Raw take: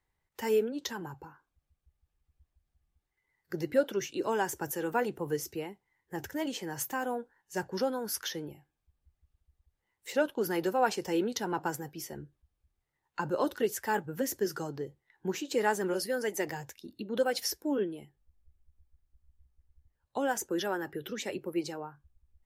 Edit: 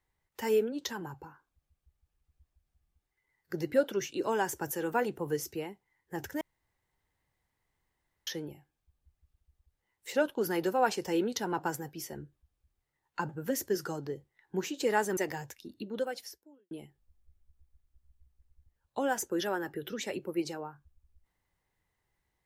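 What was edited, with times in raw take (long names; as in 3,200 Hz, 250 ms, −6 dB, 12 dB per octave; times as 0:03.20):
0:06.41–0:08.27: fill with room tone
0:13.29–0:14.00: remove
0:15.88–0:16.36: remove
0:16.98–0:17.90: fade out quadratic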